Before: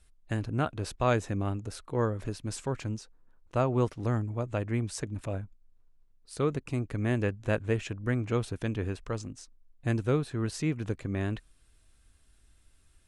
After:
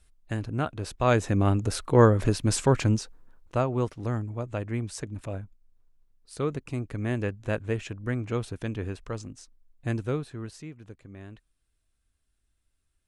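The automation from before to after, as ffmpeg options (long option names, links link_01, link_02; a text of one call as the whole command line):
ffmpeg -i in.wav -af "volume=11dB,afade=type=in:start_time=0.95:duration=0.79:silence=0.298538,afade=type=out:start_time=2.95:duration=0.72:silence=0.266073,afade=type=out:start_time=9.94:duration=0.76:silence=0.237137" out.wav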